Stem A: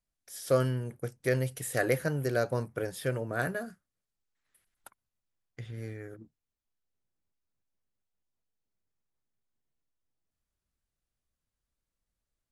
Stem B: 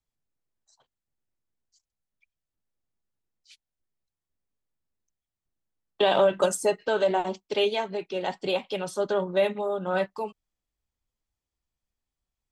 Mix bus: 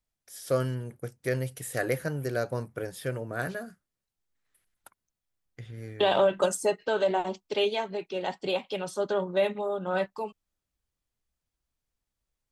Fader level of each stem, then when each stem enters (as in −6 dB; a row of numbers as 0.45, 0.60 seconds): −1.0, −2.0 decibels; 0.00, 0.00 seconds